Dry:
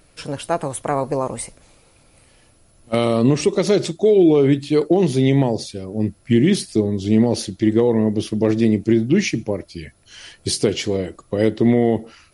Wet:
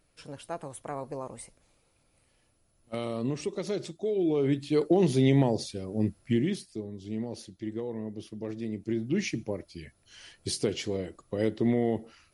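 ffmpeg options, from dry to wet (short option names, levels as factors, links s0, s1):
-af "volume=1.26,afade=t=in:st=4.15:d=0.9:silence=0.354813,afade=t=out:st=6.07:d=0.56:silence=0.237137,afade=t=in:st=8.67:d=0.66:silence=0.375837"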